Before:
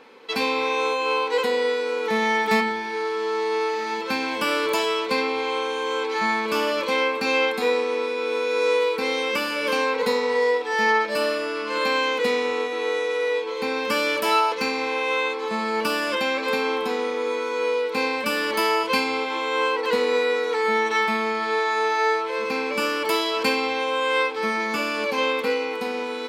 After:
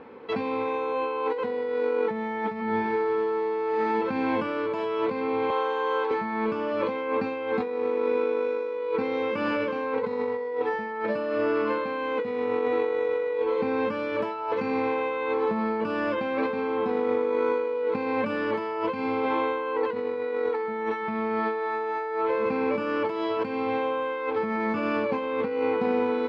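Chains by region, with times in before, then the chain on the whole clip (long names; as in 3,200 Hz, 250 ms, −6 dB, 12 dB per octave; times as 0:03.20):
0:05.50–0:06.11: high-pass filter 560 Hz + notch filter 2,300 Hz, Q 5.7
whole clip: parametric band 85 Hz +14 dB 2.1 octaves; compressor whose output falls as the input rises −26 dBFS, ratio −1; Bessel low-pass filter 1,300 Hz, order 2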